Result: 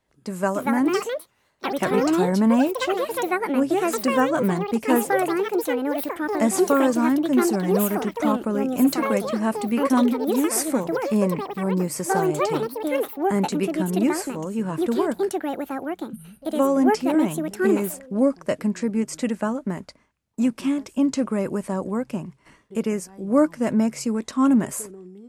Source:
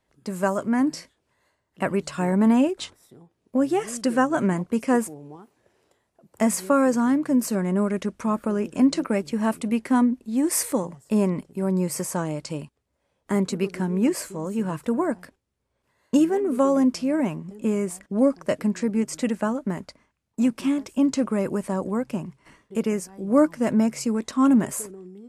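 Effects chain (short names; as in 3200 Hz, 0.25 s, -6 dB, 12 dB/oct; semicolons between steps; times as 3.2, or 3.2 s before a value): spectral delete 15.51–16.55, 230–8500 Hz; echoes that change speed 0.364 s, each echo +6 st, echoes 2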